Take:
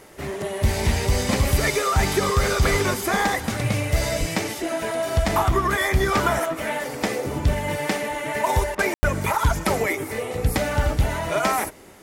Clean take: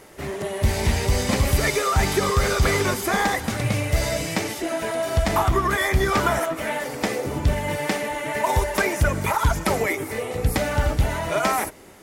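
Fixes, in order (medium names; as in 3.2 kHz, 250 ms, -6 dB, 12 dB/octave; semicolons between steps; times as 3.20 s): 2.70–2.82 s: high-pass 140 Hz 24 dB/octave; 4.19–4.31 s: high-pass 140 Hz 24 dB/octave; room tone fill 8.94–9.03 s; interpolate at 8.75 s, 38 ms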